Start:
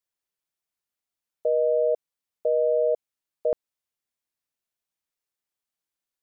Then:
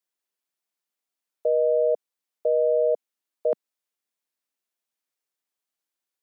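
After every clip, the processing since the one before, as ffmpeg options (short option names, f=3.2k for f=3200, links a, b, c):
-af "highpass=f=200:w=0.5412,highpass=f=200:w=1.3066,volume=1dB"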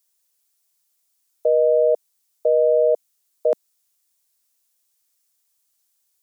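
-af "bass=f=250:g=-8,treble=f=4k:g=14,volume=5dB"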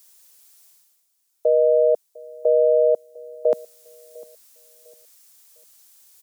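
-filter_complex "[0:a]areverse,acompressor=mode=upward:threshold=-38dB:ratio=2.5,areverse,asplit=2[a][b];[b]adelay=702,lowpass=f=820:p=1,volume=-21.5dB,asplit=2[c][d];[d]adelay=702,lowpass=f=820:p=1,volume=0.36,asplit=2[e][f];[f]adelay=702,lowpass=f=820:p=1,volume=0.36[g];[a][c][e][g]amix=inputs=4:normalize=0"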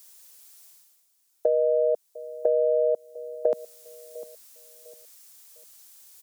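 -af "acompressor=threshold=-21dB:ratio=6,volume=1.5dB"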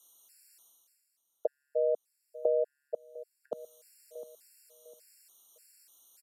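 -af "aresample=32000,aresample=44100,afftfilt=real='re*gt(sin(2*PI*1.7*pts/sr)*(1-2*mod(floor(b*sr/1024/1400),2)),0)':imag='im*gt(sin(2*PI*1.7*pts/sr)*(1-2*mod(floor(b*sr/1024/1400),2)),0)':win_size=1024:overlap=0.75,volume=-5dB"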